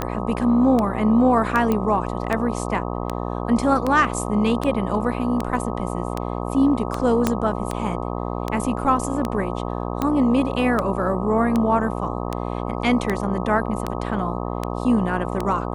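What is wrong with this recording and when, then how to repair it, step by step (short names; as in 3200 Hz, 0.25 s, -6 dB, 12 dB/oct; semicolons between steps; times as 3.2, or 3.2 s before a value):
buzz 60 Hz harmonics 21 -27 dBFS
tick 78 rpm -10 dBFS
1.72 pop -10 dBFS
7.27 pop -5 dBFS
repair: de-click; de-hum 60 Hz, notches 21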